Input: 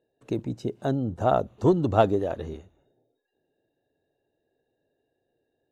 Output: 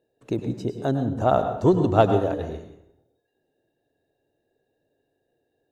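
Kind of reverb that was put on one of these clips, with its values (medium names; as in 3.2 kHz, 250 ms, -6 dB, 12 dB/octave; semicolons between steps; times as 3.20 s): plate-style reverb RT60 0.65 s, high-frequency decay 0.7×, pre-delay 90 ms, DRR 7 dB; trim +2 dB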